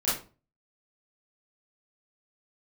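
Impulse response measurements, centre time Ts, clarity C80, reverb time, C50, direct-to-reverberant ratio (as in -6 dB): 45 ms, 10.5 dB, 0.35 s, 3.5 dB, -11.0 dB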